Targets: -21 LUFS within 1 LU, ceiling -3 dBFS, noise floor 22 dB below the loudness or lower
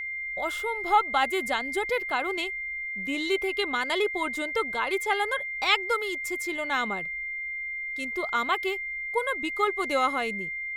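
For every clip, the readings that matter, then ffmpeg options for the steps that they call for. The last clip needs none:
steady tone 2100 Hz; tone level -31 dBFS; loudness -27.5 LUFS; peak -8.5 dBFS; loudness target -21.0 LUFS
-> -af "bandreject=f=2.1k:w=30"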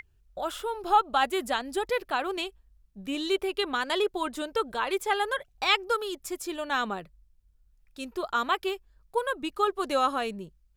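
steady tone none; loudness -29.0 LUFS; peak -9.5 dBFS; loudness target -21.0 LUFS
-> -af "volume=8dB,alimiter=limit=-3dB:level=0:latency=1"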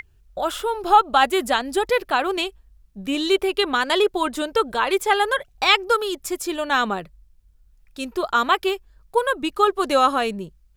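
loudness -21.0 LUFS; peak -3.0 dBFS; noise floor -56 dBFS

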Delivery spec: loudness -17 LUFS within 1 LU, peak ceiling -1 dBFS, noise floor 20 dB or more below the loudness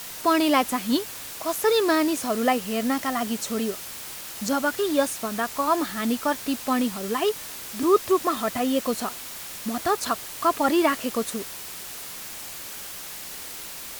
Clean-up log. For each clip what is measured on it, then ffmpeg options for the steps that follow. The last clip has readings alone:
noise floor -38 dBFS; noise floor target -46 dBFS; loudness -25.5 LUFS; peak -7.0 dBFS; loudness target -17.0 LUFS
-> -af "afftdn=nr=8:nf=-38"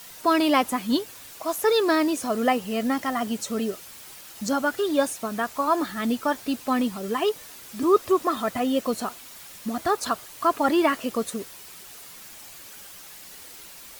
noise floor -44 dBFS; noise floor target -45 dBFS
-> -af "afftdn=nr=6:nf=-44"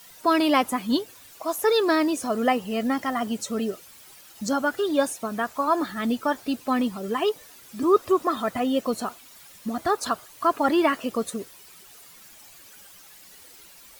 noise floor -49 dBFS; loudness -25.0 LUFS; peak -7.0 dBFS; loudness target -17.0 LUFS
-> -af "volume=8dB,alimiter=limit=-1dB:level=0:latency=1"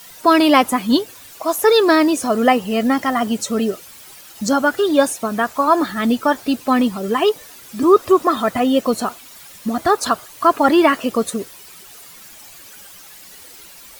loudness -17.0 LUFS; peak -1.0 dBFS; noise floor -41 dBFS

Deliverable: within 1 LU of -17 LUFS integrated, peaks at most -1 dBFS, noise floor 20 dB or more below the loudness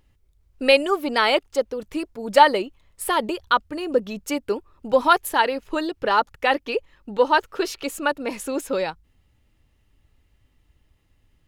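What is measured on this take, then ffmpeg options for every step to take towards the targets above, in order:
loudness -22.5 LUFS; peak -2.0 dBFS; loudness target -17.0 LUFS
-> -af "volume=5.5dB,alimiter=limit=-1dB:level=0:latency=1"

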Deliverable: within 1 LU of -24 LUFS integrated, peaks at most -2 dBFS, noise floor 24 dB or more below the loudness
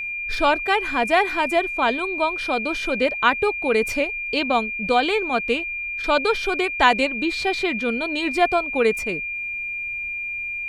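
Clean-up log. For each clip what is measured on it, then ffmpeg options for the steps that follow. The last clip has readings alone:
steady tone 2400 Hz; tone level -26 dBFS; loudness -21.5 LUFS; peak -1.5 dBFS; loudness target -24.0 LUFS
-> -af "bandreject=f=2.4k:w=30"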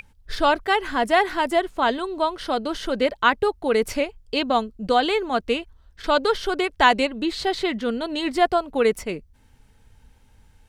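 steady tone none; loudness -22.5 LUFS; peak -2.0 dBFS; loudness target -24.0 LUFS
-> -af "volume=-1.5dB"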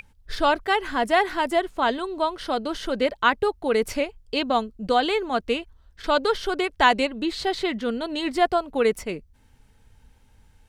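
loudness -24.0 LUFS; peak -3.5 dBFS; noise floor -58 dBFS

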